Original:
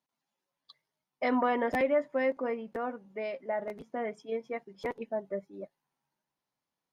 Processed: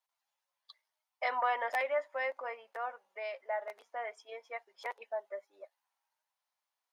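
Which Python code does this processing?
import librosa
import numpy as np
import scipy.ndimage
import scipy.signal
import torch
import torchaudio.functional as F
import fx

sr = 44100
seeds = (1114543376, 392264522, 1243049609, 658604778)

y = scipy.signal.sosfilt(scipy.signal.butter(4, 660.0, 'highpass', fs=sr, output='sos'), x)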